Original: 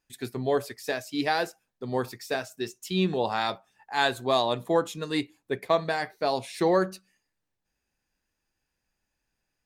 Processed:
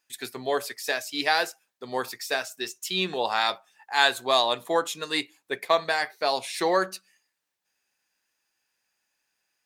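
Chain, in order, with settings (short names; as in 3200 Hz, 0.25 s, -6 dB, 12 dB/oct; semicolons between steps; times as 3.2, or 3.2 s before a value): HPF 1200 Hz 6 dB/oct; gain +7 dB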